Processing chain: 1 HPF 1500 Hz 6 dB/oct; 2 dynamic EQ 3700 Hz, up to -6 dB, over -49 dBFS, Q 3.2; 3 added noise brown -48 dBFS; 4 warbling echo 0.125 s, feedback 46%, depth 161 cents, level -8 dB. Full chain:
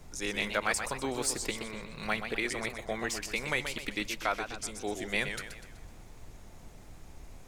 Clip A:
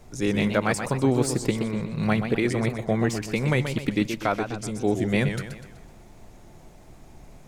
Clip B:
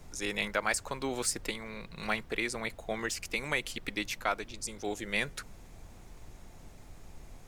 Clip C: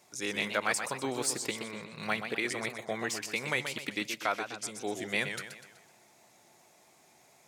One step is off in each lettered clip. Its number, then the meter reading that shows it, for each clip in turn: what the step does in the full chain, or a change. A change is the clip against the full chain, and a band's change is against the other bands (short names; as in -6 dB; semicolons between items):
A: 1, 125 Hz band +15.5 dB; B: 4, momentary loudness spread change +5 LU; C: 3, momentary loudness spread change -10 LU